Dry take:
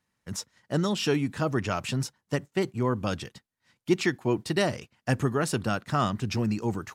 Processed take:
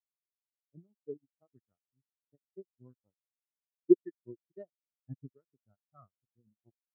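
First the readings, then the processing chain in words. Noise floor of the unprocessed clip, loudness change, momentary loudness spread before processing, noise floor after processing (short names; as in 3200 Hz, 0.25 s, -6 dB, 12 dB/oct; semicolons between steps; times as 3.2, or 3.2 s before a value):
-84 dBFS, -1.5 dB, 10 LU, under -85 dBFS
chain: added harmonics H 7 -16 dB, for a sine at -10.5 dBFS; spectral expander 4:1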